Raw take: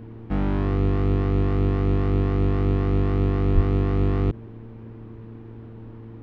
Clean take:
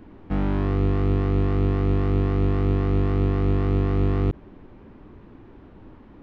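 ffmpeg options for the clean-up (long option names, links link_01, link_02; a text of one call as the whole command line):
ffmpeg -i in.wav -filter_complex "[0:a]bandreject=frequency=113:width_type=h:width=4,bandreject=frequency=226:width_type=h:width=4,bandreject=frequency=339:width_type=h:width=4,bandreject=frequency=452:width_type=h:width=4,asplit=3[link_01][link_02][link_03];[link_01]afade=type=out:start_time=3.54:duration=0.02[link_04];[link_02]highpass=frequency=140:width=0.5412,highpass=frequency=140:width=1.3066,afade=type=in:start_time=3.54:duration=0.02,afade=type=out:start_time=3.66:duration=0.02[link_05];[link_03]afade=type=in:start_time=3.66:duration=0.02[link_06];[link_04][link_05][link_06]amix=inputs=3:normalize=0" out.wav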